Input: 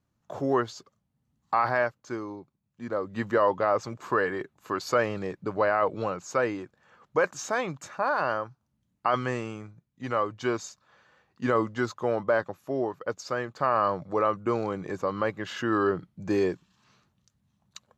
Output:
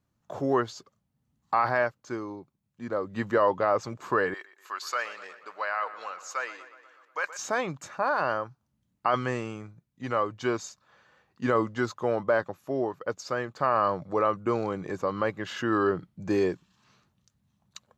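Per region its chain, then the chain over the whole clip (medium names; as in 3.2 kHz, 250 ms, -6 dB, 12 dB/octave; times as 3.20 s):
4.34–7.39 s: high-pass 1.2 kHz + filtered feedback delay 121 ms, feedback 64%, low-pass 4.9 kHz, level -14 dB
whole clip: none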